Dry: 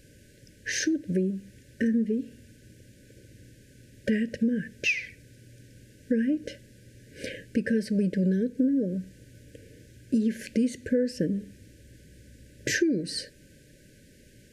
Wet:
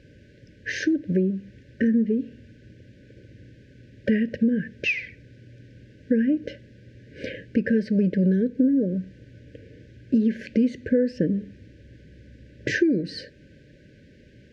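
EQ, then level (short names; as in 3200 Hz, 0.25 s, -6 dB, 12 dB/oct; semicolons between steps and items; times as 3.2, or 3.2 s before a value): HPF 44 Hz; air absorption 220 m; +4.5 dB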